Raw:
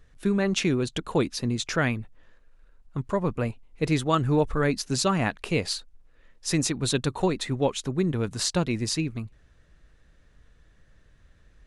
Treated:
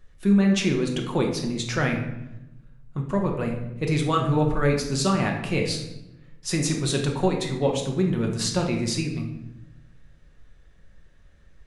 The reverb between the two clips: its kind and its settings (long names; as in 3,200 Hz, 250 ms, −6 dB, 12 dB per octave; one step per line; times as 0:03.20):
rectangular room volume 330 cubic metres, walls mixed, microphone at 1 metre
level −1.5 dB